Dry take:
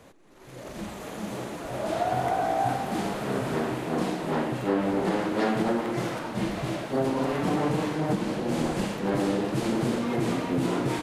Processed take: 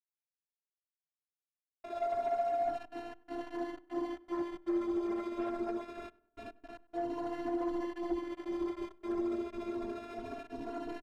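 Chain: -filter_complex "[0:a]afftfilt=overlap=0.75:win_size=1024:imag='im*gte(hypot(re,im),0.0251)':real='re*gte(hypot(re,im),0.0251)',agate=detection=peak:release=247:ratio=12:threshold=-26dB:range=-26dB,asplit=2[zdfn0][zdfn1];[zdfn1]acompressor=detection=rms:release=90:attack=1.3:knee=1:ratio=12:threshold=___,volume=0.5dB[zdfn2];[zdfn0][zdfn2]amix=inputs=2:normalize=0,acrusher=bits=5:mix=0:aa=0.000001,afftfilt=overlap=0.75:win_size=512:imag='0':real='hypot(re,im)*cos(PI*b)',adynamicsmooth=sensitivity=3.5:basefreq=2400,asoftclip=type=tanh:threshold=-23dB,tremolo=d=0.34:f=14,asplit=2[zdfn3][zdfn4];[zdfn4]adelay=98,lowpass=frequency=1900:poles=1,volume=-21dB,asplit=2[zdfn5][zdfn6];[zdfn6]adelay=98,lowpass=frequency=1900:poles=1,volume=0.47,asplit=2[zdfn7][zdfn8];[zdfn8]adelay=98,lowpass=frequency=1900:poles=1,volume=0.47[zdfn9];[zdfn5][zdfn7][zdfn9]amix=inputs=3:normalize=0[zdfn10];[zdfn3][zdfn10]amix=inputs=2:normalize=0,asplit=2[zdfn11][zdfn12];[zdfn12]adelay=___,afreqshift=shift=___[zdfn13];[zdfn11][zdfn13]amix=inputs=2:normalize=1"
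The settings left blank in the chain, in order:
-38dB, 3.5, 0.25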